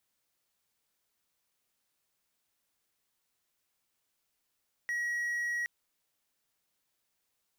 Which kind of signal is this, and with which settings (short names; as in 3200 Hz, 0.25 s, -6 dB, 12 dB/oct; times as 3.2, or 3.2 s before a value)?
tone triangle 1910 Hz -28.5 dBFS 0.77 s